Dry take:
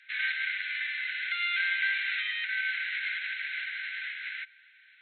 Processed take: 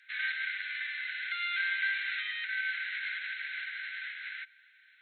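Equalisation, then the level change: peaking EQ 2.6 kHz -6.5 dB 1.2 oct; +1.0 dB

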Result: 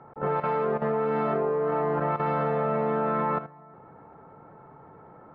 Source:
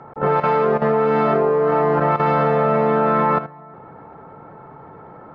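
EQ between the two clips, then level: distance through air 170 m; -8.5 dB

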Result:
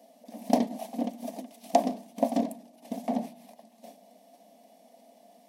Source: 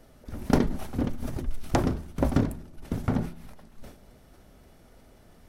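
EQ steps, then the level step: brick-wall FIR high-pass 190 Hz; peaking EQ 690 Hz +12.5 dB 0.21 oct; static phaser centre 370 Hz, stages 6; 0.0 dB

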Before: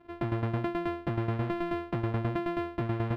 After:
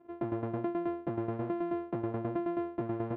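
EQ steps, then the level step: band-pass filter 430 Hz, Q 0.78; 0.0 dB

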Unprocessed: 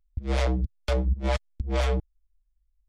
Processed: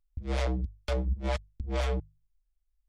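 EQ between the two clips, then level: hum notches 50/100/150 Hz; -4.5 dB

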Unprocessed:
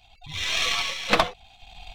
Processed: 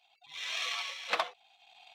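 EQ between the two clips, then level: high-pass 630 Hz 12 dB/octave; treble shelf 5.9 kHz -5.5 dB; -9.0 dB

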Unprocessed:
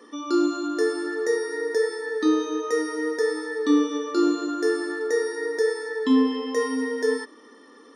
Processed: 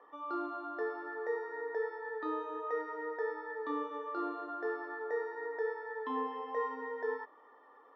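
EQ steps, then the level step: ladder band-pass 900 Hz, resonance 50%; distance through air 210 m; +6.5 dB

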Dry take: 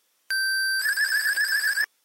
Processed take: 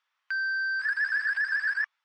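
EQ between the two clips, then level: high-pass 1 kHz 24 dB/octave; tape spacing loss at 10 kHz 41 dB; +3.5 dB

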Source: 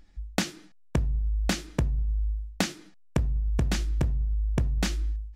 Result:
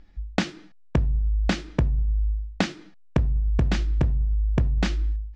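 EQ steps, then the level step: distance through air 140 m; +4.0 dB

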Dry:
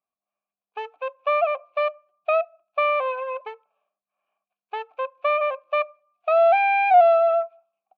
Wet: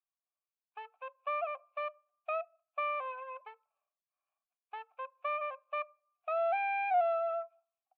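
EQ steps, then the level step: high-pass 870 Hz 12 dB/octave; distance through air 130 m; treble shelf 3.5 kHz -9.5 dB; -8.5 dB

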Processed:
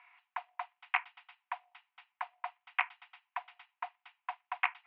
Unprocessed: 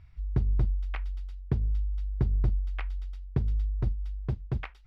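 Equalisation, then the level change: rippled Chebyshev high-pass 700 Hz, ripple 9 dB; low-pass 2.4 kHz 24 dB/octave; +17.0 dB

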